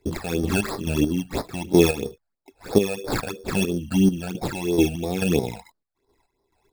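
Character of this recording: aliases and images of a low sample rate 3 kHz, jitter 0%; phasing stages 12, 3 Hz, lowest notch 330–2700 Hz; chopped level 2.3 Hz, depth 60%, duty 40%

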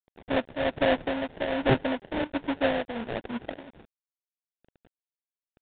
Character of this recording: aliases and images of a low sample rate 1.2 kHz, jitter 20%; tremolo triangle 1.3 Hz, depth 55%; a quantiser's noise floor 10-bit, dither none; µ-law

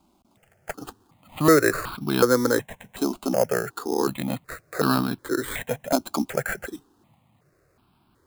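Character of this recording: aliases and images of a low sample rate 5.7 kHz, jitter 0%; notches that jump at a steady rate 2.7 Hz 480–1900 Hz

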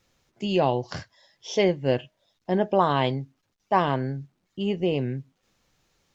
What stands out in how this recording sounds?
noise floor -75 dBFS; spectral tilt -5.0 dB/octave

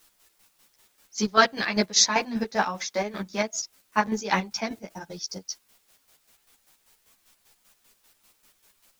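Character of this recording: a quantiser's noise floor 10-bit, dither triangular; chopped level 5.1 Hz, depth 60%, duty 40%; a shimmering, thickened sound

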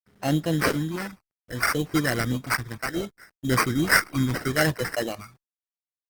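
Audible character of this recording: a quantiser's noise floor 10-bit, dither none; phasing stages 8, 0.67 Hz, lowest notch 470–1300 Hz; aliases and images of a low sample rate 3.5 kHz, jitter 0%; Opus

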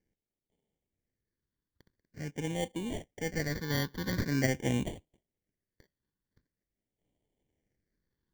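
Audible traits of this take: aliases and images of a low sample rate 1.3 kHz, jitter 0%; phasing stages 6, 0.45 Hz, lowest notch 670–1400 Hz

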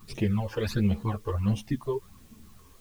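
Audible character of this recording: phasing stages 12, 1.4 Hz, lowest notch 210–1500 Hz; a quantiser's noise floor 10-bit, dither triangular; a shimmering, thickened sound

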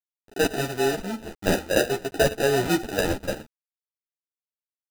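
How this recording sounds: aliases and images of a low sample rate 1.1 kHz, jitter 0%; tremolo saw up 3 Hz, depth 65%; a quantiser's noise floor 8-bit, dither none; a shimmering, thickened sound

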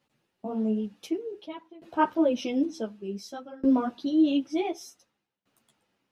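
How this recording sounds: tremolo saw down 0.55 Hz, depth 95%; a shimmering, thickened sound

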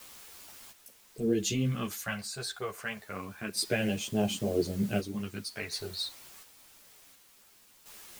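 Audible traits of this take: phasing stages 2, 0.29 Hz, lowest notch 270–1500 Hz; a quantiser's noise floor 10-bit, dither triangular; random-step tremolo 1.4 Hz, depth 70%; a shimmering, thickened sound

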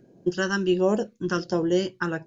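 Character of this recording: phasing stages 2, 1.4 Hz, lowest notch 640–1400 Hz

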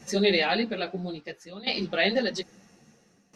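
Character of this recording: tremolo saw down 0.6 Hz, depth 90%; a shimmering, thickened sound

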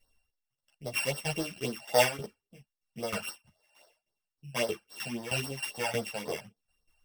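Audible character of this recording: a buzz of ramps at a fixed pitch in blocks of 16 samples; phasing stages 12, 3.7 Hz, lowest notch 340–2600 Hz; tremolo saw down 3.2 Hz, depth 80%; a shimmering, thickened sound

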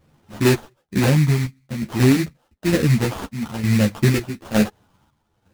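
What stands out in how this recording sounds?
phasing stages 12, 0.54 Hz, lowest notch 530–2100 Hz; chopped level 1.1 Hz, depth 60%, duty 60%; aliases and images of a low sample rate 2.2 kHz, jitter 20%; a shimmering, thickened sound

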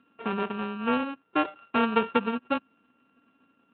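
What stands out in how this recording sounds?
a buzz of ramps at a fixed pitch in blocks of 32 samples; Speex

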